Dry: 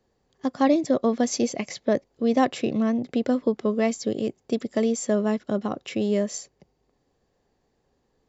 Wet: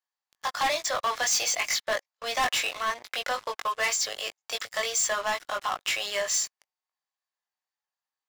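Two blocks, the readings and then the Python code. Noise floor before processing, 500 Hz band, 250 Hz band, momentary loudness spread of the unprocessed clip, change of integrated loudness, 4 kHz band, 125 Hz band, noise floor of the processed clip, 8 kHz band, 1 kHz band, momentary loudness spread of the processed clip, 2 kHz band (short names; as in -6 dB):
-72 dBFS, -9.5 dB, -28.5 dB, 8 LU, -2.5 dB, +10.0 dB, -20.0 dB, under -85 dBFS, n/a, +2.0 dB, 8 LU, +9.0 dB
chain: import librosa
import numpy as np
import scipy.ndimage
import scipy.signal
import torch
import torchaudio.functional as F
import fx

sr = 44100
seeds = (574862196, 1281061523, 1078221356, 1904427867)

y = scipy.signal.sosfilt(scipy.signal.cheby2(4, 80, 160.0, 'highpass', fs=sr, output='sos'), x)
y = fx.doubler(y, sr, ms=20.0, db=-4.0)
y = fx.leveller(y, sr, passes=5)
y = y * librosa.db_to_amplitude(-6.0)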